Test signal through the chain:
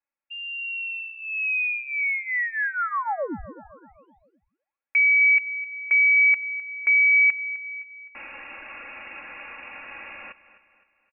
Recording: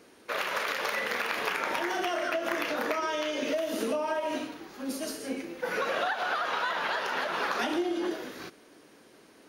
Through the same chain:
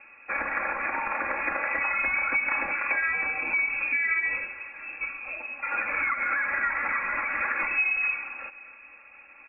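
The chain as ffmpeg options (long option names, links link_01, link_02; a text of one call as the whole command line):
ffmpeg -i in.wav -filter_complex "[0:a]highpass=210,lowpass=frequency=2500:width_type=q:width=0.5098,lowpass=frequency=2500:width_type=q:width=0.6013,lowpass=frequency=2500:width_type=q:width=0.9,lowpass=frequency=2500:width_type=q:width=2.563,afreqshift=-2900,aecho=1:1:3.6:0.81,aecho=1:1:258|516|774|1032:0.133|0.0573|0.0247|0.0106,asplit=2[link_01][link_02];[link_02]acompressor=threshold=-50dB:ratio=6,volume=-3dB[link_03];[link_01][link_03]amix=inputs=2:normalize=0" out.wav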